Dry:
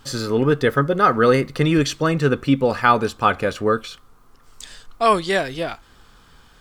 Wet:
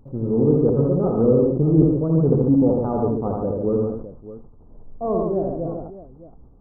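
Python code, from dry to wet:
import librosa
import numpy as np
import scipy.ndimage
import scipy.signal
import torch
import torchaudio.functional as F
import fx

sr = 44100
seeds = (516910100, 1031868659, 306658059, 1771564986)

p1 = fx.block_float(x, sr, bits=3)
p2 = scipy.ndimage.gaussian_filter1d(p1, 14.0, mode='constant')
p3 = p2 + fx.echo_multitap(p2, sr, ms=(62, 80, 143, 219, 615), db=(-10.0, -3.0, -4.0, -14.5, -15.0), dry=0)
y = fx.sustainer(p3, sr, db_per_s=61.0)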